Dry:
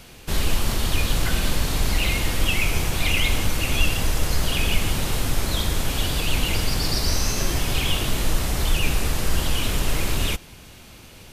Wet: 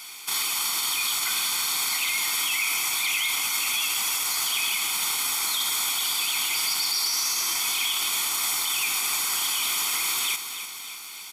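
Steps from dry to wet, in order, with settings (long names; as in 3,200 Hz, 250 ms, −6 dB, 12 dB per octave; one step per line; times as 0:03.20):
high-pass filter 770 Hz 12 dB per octave
high-shelf EQ 3,000 Hz +9 dB
comb filter 0.9 ms, depth 80%
brickwall limiter −17 dBFS, peak gain reduction 11 dB
feedback echo at a low word length 296 ms, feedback 55%, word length 9 bits, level −10 dB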